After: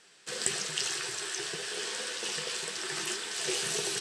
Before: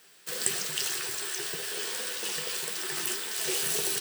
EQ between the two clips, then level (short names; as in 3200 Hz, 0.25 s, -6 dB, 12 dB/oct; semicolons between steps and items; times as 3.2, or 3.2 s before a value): LPF 8400 Hz 24 dB/oct; 0.0 dB